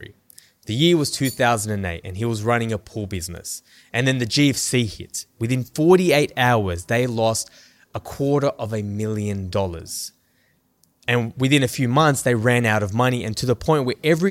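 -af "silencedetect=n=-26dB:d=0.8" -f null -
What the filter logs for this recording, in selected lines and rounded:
silence_start: 10.07
silence_end: 11.08 | silence_duration: 1.02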